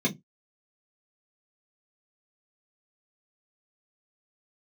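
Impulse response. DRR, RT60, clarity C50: -4.5 dB, 0.15 s, 22.0 dB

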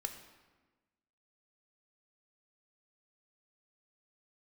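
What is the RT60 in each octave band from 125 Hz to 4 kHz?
1.4 s, 1.5 s, 1.3 s, 1.2 s, 1.2 s, 0.90 s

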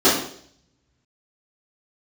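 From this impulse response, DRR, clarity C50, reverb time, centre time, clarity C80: -14.0 dB, 4.5 dB, 0.60 s, 41 ms, 8.0 dB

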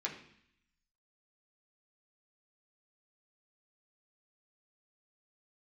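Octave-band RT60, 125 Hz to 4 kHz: 0.95 s, 0.90 s, 0.60 s, 0.70 s, 0.85 s, 0.85 s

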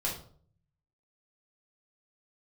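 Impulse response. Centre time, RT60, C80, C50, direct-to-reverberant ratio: 28 ms, 0.50 s, 11.5 dB, 6.0 dB, -4.0 dB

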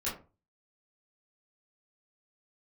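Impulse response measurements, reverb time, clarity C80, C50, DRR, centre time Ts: 0.35 s, 13.5 dB, 7.5 dB, -9.5 dB, 32 ms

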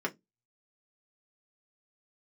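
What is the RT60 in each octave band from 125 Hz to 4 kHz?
0.25 s, 0.25 s, 0.20 s, 0.15 s, 0.10 s, 0.15 s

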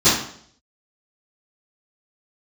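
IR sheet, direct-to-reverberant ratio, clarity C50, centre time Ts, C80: -18.5 dB, 3.0 dB, 47 ms, 7.5 dB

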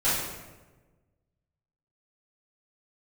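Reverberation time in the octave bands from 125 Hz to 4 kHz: 1.7 s, 1.5 s, 1.4 s, 1.1 s, 1.0 s, 0.80 s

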